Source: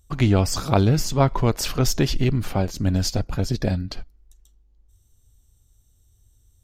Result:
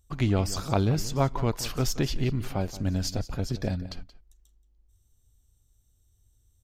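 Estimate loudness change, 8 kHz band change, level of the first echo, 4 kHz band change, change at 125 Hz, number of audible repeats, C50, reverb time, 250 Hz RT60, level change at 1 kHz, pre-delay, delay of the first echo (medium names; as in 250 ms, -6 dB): -6.5 dB, -6.5 dB, -16.0 dB, -6.5 dB, -6.5 dB, 1, no reverb, no reverb, no reverb, -6.5 dB, no reverb, 177 ms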